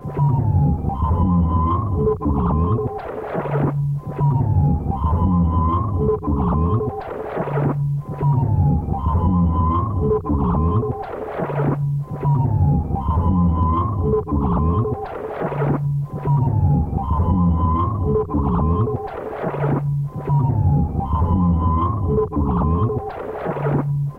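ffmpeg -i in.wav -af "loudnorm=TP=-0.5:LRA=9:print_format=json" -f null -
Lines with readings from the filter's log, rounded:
"input_i" : "-20.1",
"input_tp" : "-7.0",
"input_lra" : "1.1",
"input_thresh" : "-30.1",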